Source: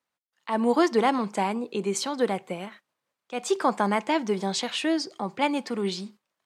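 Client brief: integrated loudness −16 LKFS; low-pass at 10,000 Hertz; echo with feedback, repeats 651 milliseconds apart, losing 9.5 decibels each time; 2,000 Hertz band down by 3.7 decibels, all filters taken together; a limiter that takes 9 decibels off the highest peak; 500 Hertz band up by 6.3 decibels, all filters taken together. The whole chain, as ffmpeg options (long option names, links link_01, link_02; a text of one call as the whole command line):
ffmpeg -i in.wav -af "lowpass=10000,equalizer=frequency=500:width_type=o:gain=8,equalizer=frequency=2000:width_type=o:gain=-5,alimiter=limit=-15dB:level=0:latency=1,aecho=1:1:651|1302|1953|2604:0.335|0.111|0.0365|0.012,volume=10dB" out.wav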